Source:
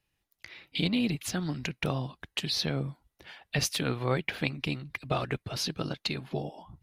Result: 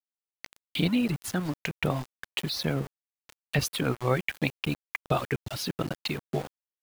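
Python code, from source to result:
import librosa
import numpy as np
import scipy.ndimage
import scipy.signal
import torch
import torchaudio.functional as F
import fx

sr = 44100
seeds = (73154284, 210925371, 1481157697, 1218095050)

y = fx.dereverb_blind(x, sr, rt60_s=1.3)
y = np.where(np.abs(y) >= 10.0 ** (-38.5 / 20.0), y, 0.0)
y = fx.dynamic_eq(y, sr, hz=5400.0, q=0.8, threshold_db=-47.0, ratio=4.0, max_db=-7)
y = F.gain(torch.from_numpy(y), 4.0).numpy()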